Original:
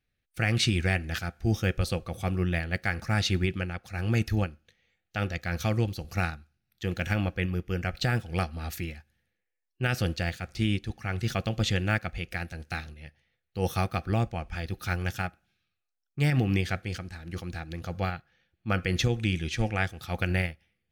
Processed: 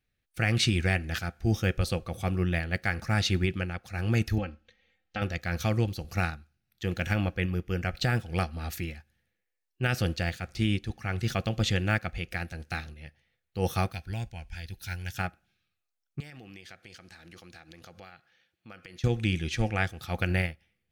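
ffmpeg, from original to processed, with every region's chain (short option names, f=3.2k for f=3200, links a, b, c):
-filter_complex "[0:a]asettb=1/sr,asplit=3[a][b][c];[a]atrim=end=4.384[d];[b]atrim=start=4.38:end=5.22,asetpts=PTS-STARTPTS,afade=t=in:d=0.004:c=qsin,afade=t=out:st=0.836:d=0.004:c=qsin,lowpass=4.7k,aecho=1:1:3.8:0.86,atrim=end_sample=37044,acompressor=threshold=-28dB:ratio=4:attack=3.2:release=140:knee=1:detection=peak[e];[c]atrim=start=5.216[f];[d][e]acrossfade=d=0.004:c1=hsin:c2=qsin[g];[g][f]acrossfade=d=0.004:c1=qsin:c2=hsin,asettb=1/sr,asplit=3[h][i][j];[h]atrim=end=13.924[k];[i]atrim=start=13.92:end=15.17,asetpts=PTS-STARTPTS,afade=t=in:d=0.004:c=qsin,afade=t=out:st=1.246:d=0.004:c=qsin,asuperstop=centerf=1200:order=8:qfactor=4.6,equalizer=f=430:w=0.31:g=-14.5[l];[j]atrim=start=15.166[m];[k][l]acrossfade=d=0.004:c1=hsin:c2=qsin[n];[n][m]acrossfade=d=0.004:c1=qsin:c2=hsin,asettb=1/sr,asplit=3[o][p][q];[o]atrim=end=16.204[r];[p]atrim=start=16.2:end=19.04,asetpts=PTS-STARTPTS,afade=t=in:d=0.004:c=qsin,afade=t=out:st=2.836:d=0.004:c=qsin,highpass=f=340:p=1,equalizer=f=4.7k:t=o:w=2.2:g=4,acompressor=threshold=-47dB:ratio=4:attack=3.2:release=140:knee=1:detection=peak[s];[q]atrim=start=19.036[t];[r][s]acrossfade=d=0.004:c1=hsin:c2=qsin[u];[u][t]acrossfade=d=0.004:c1=qsin:c2=hsin"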